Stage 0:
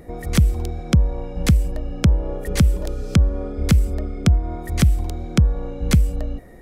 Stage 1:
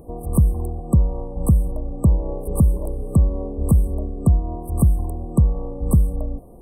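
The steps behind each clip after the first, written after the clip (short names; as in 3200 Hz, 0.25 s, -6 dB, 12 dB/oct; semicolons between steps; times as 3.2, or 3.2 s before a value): de-hum 180.8 Hz, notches 34; FFT band-reject 1200–8000 Hz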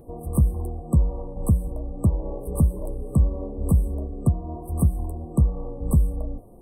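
flange 1.4 Hz, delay 8 ms, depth 7.4 ms, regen -40%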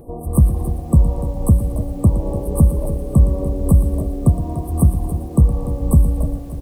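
feedback echo 0.117 s, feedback 31%, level -12.5 dB; lo-fi delay 0.294 s, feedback 55%, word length 8-bit, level -12.5 dB; gain +6.5 dB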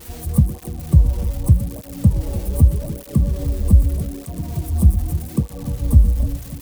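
switching spikes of -15.5 dBFS; tone controls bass +7 dB, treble -1 dB; tape flanging out of phase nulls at 0.82 Hz, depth 7.7 ms; gain -5 dB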